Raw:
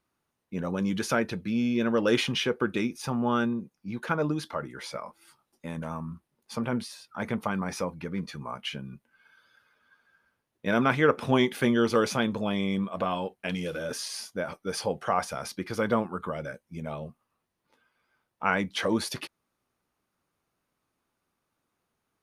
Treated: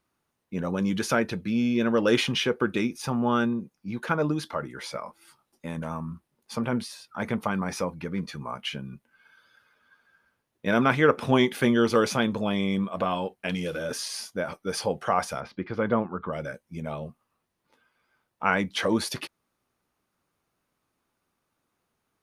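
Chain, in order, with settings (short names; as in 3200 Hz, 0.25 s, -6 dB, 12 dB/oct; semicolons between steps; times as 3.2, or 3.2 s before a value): 15.4–16.33 air absorption 340 m; gain +2 dB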